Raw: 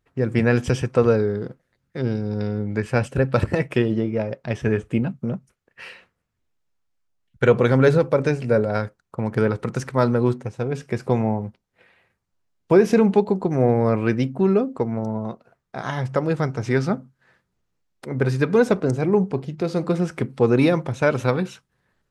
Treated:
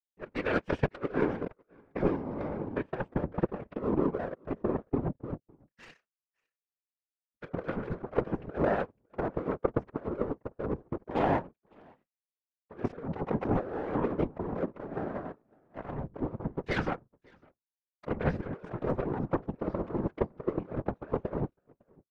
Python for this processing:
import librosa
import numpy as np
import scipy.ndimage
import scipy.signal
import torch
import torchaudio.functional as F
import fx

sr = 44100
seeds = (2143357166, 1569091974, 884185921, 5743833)

y = fx.fade_in_head(x, sr, length_s=0.93)
y = scipy.signal.sosfilt(scipy.signal.butter(2, 170.0, 'highpass', fs=sr, output='sos'), y)
y = fx.low_shelf(y, sr, hz=500.0, db=-5.0)
y = y + 0.68 * np.pad(y, (int(6.2 * sr / 1000.0), 0))[:len(y)]
y = fx.over_compress(y, sr, threshold_db=-26.0, ratio=-1.0)
y = fx.filter_lfo_lowpass(y, sr, shape='saw_down', hz=0.18, low_hz=370.0, high_hz=2100.0, q=0.77)
y = y + 10.0 ** (-14.5 / 20.0) * np.pad(y, (int(556 * sr / 1000.0), 0))[:len(y)]
y = fx.power_curve(y, sr, exponent=2.0)
y = fx.whisperise(y, sr, seeds[0])
y = y * 10.0 ** (4.0 / 20.0)